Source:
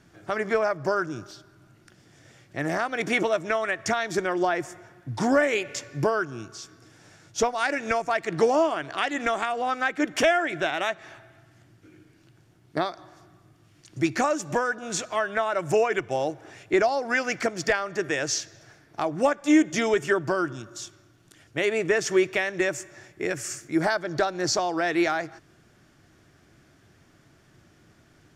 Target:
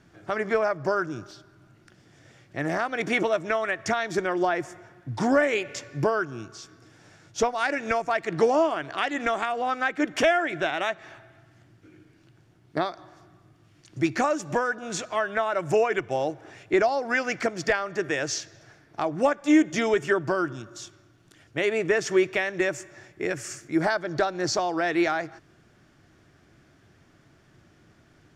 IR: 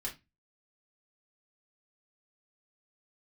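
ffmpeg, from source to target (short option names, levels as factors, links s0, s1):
-af "highshelf=f=7200:g=-8"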